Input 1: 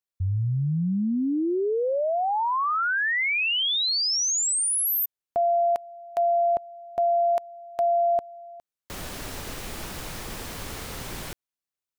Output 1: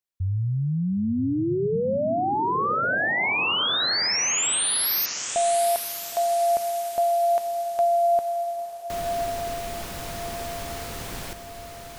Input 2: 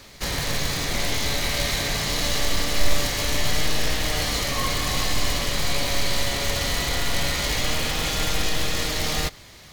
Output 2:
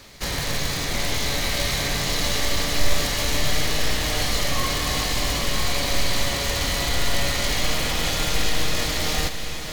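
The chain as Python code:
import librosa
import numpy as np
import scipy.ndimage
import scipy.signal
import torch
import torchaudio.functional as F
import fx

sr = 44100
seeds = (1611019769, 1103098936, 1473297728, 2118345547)

y = fx.echo_diffused(x, sr, ms=939, feedback_pct=43, wet_db=-7.5)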